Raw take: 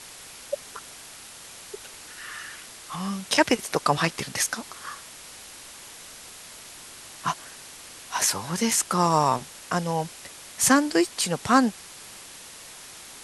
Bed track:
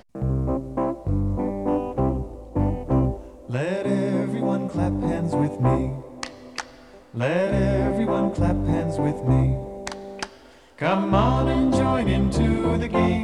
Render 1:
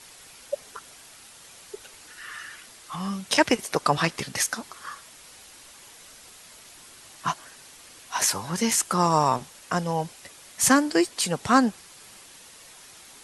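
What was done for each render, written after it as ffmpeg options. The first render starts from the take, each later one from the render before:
-af "afftdn=nr=6:nf=-44"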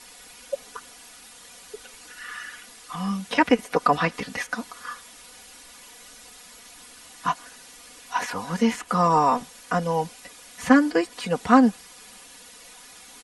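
-filter_complex "[0:a]acrossover=split=2900[s0][s1];[s1]acompressor=threshold=0.00631:ratio=4:attack=1:release=60[s2];[s0][s2]amix=inputs=2:normalize=0,aecho=1:1:4.1:0.83"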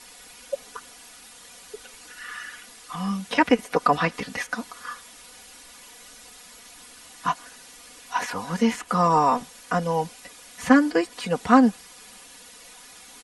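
-af anull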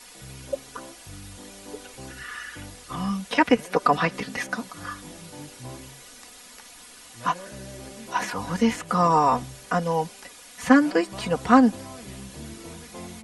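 -filter_complex "[1:a]volume=0.1[s0];[0:a][s0]amix=inputs=2:normalize=0"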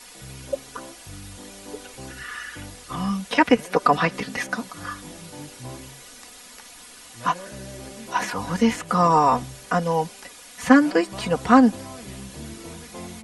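-af "volume=1.26,alimiter=limit=0.794:level=0:latency=1"

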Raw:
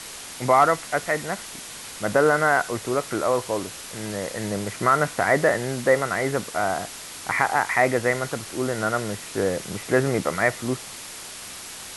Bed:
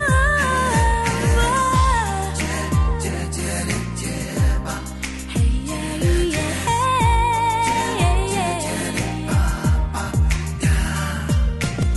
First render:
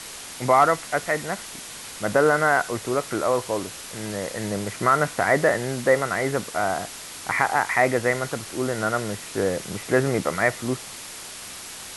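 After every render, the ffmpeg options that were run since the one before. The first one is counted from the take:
-af anull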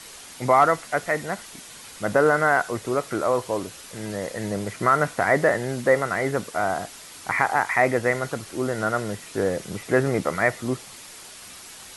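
-af "afftdn=nr=6:nf=-38"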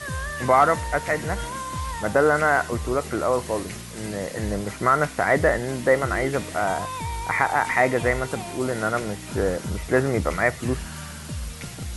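-filter_complex "[1:a]volume=0.2[s0];[0:a][s0]amix=inputs=2:normalize=0"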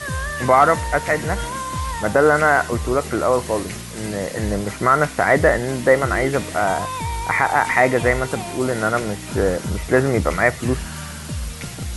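-af "volume=1.68,alimiter=limit=0.708:level=0:latency=1"

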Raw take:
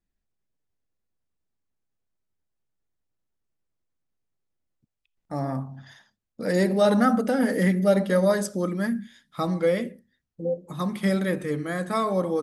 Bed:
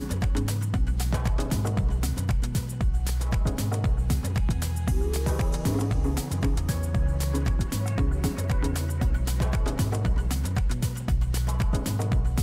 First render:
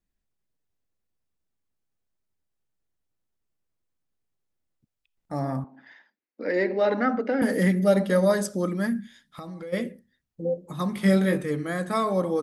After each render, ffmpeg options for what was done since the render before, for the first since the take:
-filter_complex "[0:a]asettb=1/sr,asplit=3[s0][s1][s2];[s0]atrim=end=5.644[s3];[s1]atrim=start=5.64:end=7.42,asetpts=PTS-STARTPTS,afade=t=in:d=0.004:c=qsin,afade=t=out:st=1.776:d=0.004:c=qsin,highpass=f=280:w=0.5412,highpass=f=280:w=1.3066,equalizer=f=290:t=q:w=4:g=4,equalizer=f=690:t=q:w=4:g=-5,equalizer=f=1200:t=q:w=4:g=-5,equalizer=f=2100:t=q:w=4:g=6,equalizer=f=3400:t=q:w=4:g=-10,lowpass=f=3900:w=0.5412,lowpass=f=3900:w=1.3066[s4];[s2]atrim=start=7.416[s5];[s3][s4]acrossfade=d=0.004:c1=hsin:c2=qsin[s6];[s6][s5]acrossfade=d=0.004:c1=qsin:c2=hsin,asplit=3[s7][s8][s9];[s7]afade=t=out:st=9:d=0.02[s10];[s8]acompressor=threshold=0.0178:ratio=8:attack=3.2:release=140:knee=1:detection=peak,afade=t=in:st=9:d=0.02,afade=t=out:st=9.72:d=0.02[s11];[s9]afade=t=in:st=9.72:d=0.02[s12];[s10][s11][s12]amix=inputs=3:normalize=0,asettb=1/sr,asplit=3[s13][s14][s15];[s13]atrim=end=10.954[s16];[s14]atrim=start=10.95:end=11.41,asetpts=PTS-STARTPTS,afade=t=in:d=0.004:c=qsin,afade=t=out:st=0.456:d=0.004:c=qsin,asplit=2[s17][s18];[s18]adelay=21,volume=0.631[s19];[s17][s19]amix=inputs=2:normalize=0,atrim=end_sample=20286[s20];[s15]atrim=start=11.406[s21];[s16][s20]acrossfade=d=0.004:c1=hsin:c2=qsin[s22];[s22][s21]acrossfade=d=0.004:c1=qsin:c2=hsin"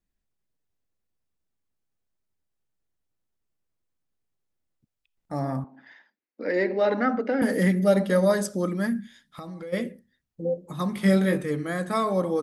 -af anull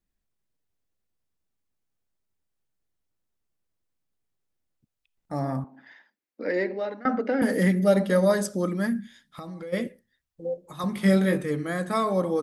-filter_complex "[0:a]asettb=1/sr,asplit=3[s0][s1][s2];[s0]atrim=end=9.874[s3];[s1]atrim=start=9.87:end=10.84,asetpts=PTS-STARTPTS,afade=t=in:d=0.004:c=qsin,afade=t=out:st=0.966:d=0.004:c=qsin,equalizer=f=200:w=0.74:g=-11[s4];[s2]atrim=start=10.836[s5];[s3][s4]acrossfade=d=0.004:c1=hsin:c2=qsin[s6];[s6][s5]acrossfade=d=0.004:c1=qsin:c2=hsin,asplit=2[s7][s8];[s7]atrim=end=7.05,asetpts=PTS-STARTPTS,afade=t=out:st=6.47:d=0.58:silence=0.0668344[s9];[s8]atrim=start=7.05,asetpts=PTS-STARTPTS,afade=t=in:d=0.004:c=hsin:silence=0.0668344[s10];[s9][s10]concat=n=2:v=0:a=1"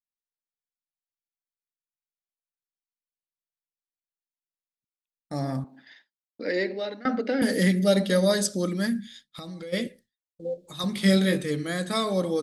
-af "agate=range=0.0224:threshold=0.00398:ratio=3:detection=peak,equalizer=f=1000:t=o:w=1:g=-6,equalizer=f=4000:t=o:w=1:g=11,equalizer=f=8000:t=o:w=1:g=5"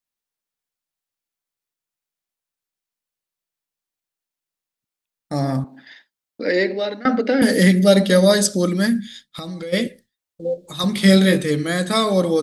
-af "volume=2.51,alimiter=limit=0.794:level=0:latency=1"

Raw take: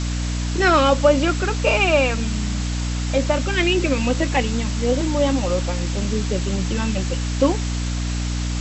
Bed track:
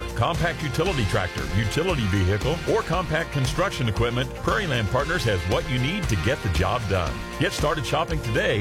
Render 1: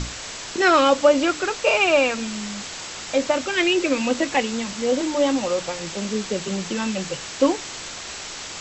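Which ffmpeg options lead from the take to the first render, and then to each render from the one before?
-af "bandreject=f=60:t=h:w=6,bandreject=f=120:t=h:w=6,bandreject=f=180:t=h:w=6,bandreject=f=240:t=h:w=6,bandreject=f=300:t=h:w=6"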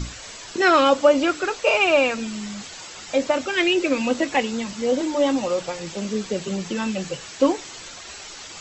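-af "afftdn=nr=9:nf=-35"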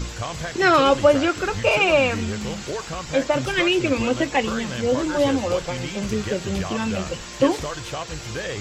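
-filter_complex "[1:a]volume=0.422[s0];[0:a][s0]amix=inputs=2:normalize=0"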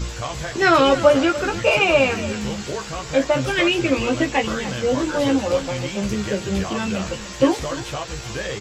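-filter_complex "[0:a]asplit=2[s0][s1];[s1]adelay=15,volume=0.562[s2];[s0][s2]amix=inputs=2:normalize=0,aecho=1:1:292:0.178"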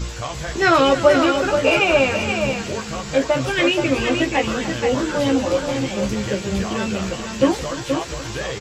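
-af "aecho=1:1:477:0.473"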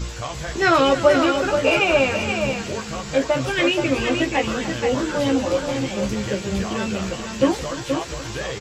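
-af "volume=0.841"

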